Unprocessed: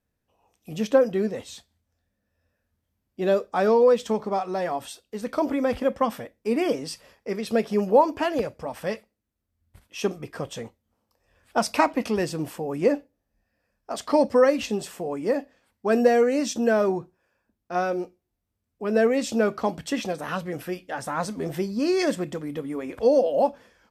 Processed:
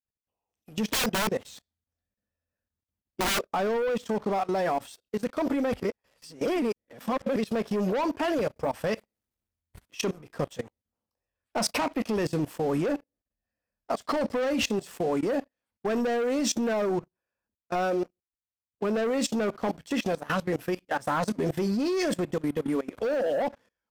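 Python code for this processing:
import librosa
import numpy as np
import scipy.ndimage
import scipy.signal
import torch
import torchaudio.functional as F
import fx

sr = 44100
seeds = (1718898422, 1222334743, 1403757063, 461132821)

y = fx.overflow_wrap(x, sr, gain_db=22.0, at=(0.9, 3.42))
y = fx.law_mismatch(y, sr, coded='mu', at=(8.56, 10.07))
y = fx.edit(y, sr, fx.reverse_span(start_s=5.82, length_s=1.54), tone=tone)
y = fx.leveller(y, sr, passes=3)
y = fx.level_steps(y, sr, step_db=21)
y = F.gain(torch.from_numpy(y), -5.0).numpy()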